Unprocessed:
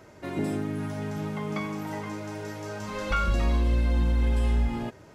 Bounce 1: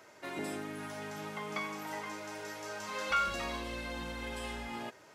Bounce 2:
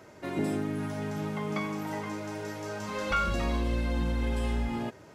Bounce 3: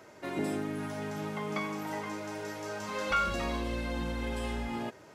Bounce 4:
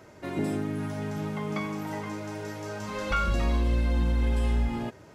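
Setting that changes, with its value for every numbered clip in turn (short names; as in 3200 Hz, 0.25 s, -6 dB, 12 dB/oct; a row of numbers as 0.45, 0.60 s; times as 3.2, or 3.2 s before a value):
HPF, cutoff: 980, 120, 330, 40 Hz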